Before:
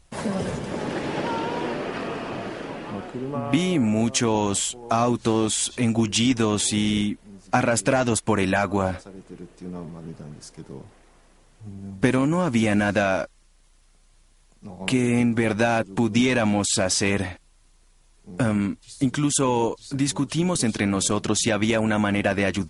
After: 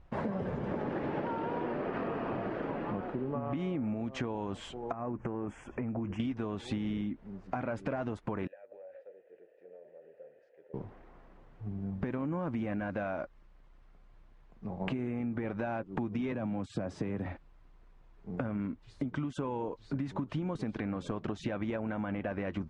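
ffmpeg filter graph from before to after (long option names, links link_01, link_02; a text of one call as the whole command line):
ffmpeg -i in.wav -filter_complex "[0:a]asettb=1/sr,asplit=3[link_01][link_02][link_03];[link_01]atrim=end=4.924[link_04];[link_02]atrim=start=4.92:end=6.2,asetpts=PTS-STARTPTS,afade=type=in:duration=0.004:curve=qsin,afade=type=out:start_time=1.276:duration=0.004:curve=qsin,highshelf=frequency=4500:gain=-6.5,acompressor=threshold=-28dB:ratio=12:attack=3.2:release=140:knee=1:detection=peak,asuperstop=centerf=4000:order=4:qfactor=1[link_05];[link_03]atrim=start=6.196[link_06];[link_04][link_05]acrossfade=duration=0.004:curve1=hsin:curve2=qsin[link_07];[link_07][link_06]acrossfade=duration=0.004:curve1=qsin:curve2=hsin,asettb=1/sr,asplit=3[link_08][link_09][link_10];[link_08]atrim=end=8.474[link_11];[link_09]atrim=start=8.47:end=10.74,asetpts=PTS-STARTPTS,afade=type=in:duration=0.004:curve=qsin,afade=type=out:start_time=2.266:duration=0.004:curve=qsin,lowshelf=frequency=350:width_type=q:width=1.5:gain=-10,acompressor=threshold=-37dB:ratio=10:attack=3.2:release=140:knee=1:detection=peak,asplit=3[link_12][link_13][link_14];[link_12]bandpass=frequency=530:width_type=q:width=8,volume=0dB[link_15];[link_13]bandpass=frequency=1840:width_type=q:width=8,volume=-6dB[link_16];[link_14]bandpass=frequency=2480:width_type=q:width=8,volume=-9dB[link_17];[link_15][link_16][link_17]amix=inputs=3:normalize=0[link_18];[link_10]atrim=start=10.736[link_19];[link_11][link_18]acrossfade=duration=0.004:curve1=hsin:curve2=qsin[link_20];[link_20][link_19]acrossfade=duration=0.004:curve1=qsin:curve2=hsin,asettb=1/sr,asplit=3[link_21][link_22][link_23];[link_21]atrim=end=16.324[link_24];[link_22]atrim=start=16.32:end=17.26,asetpts=PTS-STARTPTS,afade=type=in:duration=0.004:curve=qsin,afade=type=out:start_time=0.936:duration=0.004:curve=qsin,lowshelf=frequency=480:gain=11.5,acrossover=split=140|840|7200[link_25][link_26][link_27][link_28];[link_25]acompressor=threshold=-36dB:ratio=3[link_29];[link_26]acompressor=threshold=-27dB:ratio=3[link_30];[link_27]acompressor=threshold=-36dB:ratio=3[link_31];[link_28]acompressor=threshold=-28dB:ratio=3[link_32];[link_29][link_30][link_31][link_32]amix=inputs=4:normalize=0,highpass=87[link_33];[link_23]atrim=start=17.256[link_34];[link_24][link_33]acrossfade=duration=0.004:curve1=hsin:curve2=qsin[link_35];[link_35][link_34]acrossfade=duration=0.004:curve1=qsin:curve2=hsin,lowpass=1600,alimiter=limit=-16.5dB:level=0:latency=1:release=178,acompressor=threshold=-31dB:ratio=10" out.wav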